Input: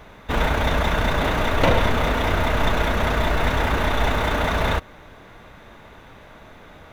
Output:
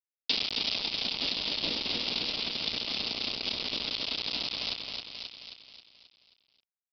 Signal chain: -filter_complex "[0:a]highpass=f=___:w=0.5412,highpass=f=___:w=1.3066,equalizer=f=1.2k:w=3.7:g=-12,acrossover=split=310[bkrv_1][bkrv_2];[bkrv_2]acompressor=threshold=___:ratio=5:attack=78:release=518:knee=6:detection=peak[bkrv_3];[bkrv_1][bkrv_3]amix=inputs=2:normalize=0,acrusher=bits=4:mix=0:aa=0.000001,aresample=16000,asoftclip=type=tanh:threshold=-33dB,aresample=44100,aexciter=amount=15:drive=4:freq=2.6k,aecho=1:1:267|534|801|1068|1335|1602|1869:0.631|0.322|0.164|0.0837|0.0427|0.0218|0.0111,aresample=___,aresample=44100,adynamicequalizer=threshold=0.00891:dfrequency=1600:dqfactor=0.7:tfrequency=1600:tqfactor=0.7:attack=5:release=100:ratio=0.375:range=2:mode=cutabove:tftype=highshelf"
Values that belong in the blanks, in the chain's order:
230, 230, -43dB, 11025